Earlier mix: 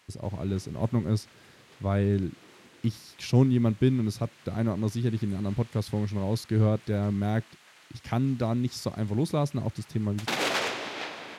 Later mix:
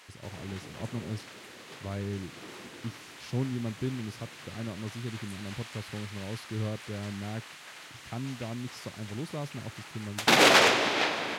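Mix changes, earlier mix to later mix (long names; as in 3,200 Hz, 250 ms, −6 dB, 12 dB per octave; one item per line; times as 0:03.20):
speech −10.0 dB
background +8.5 dB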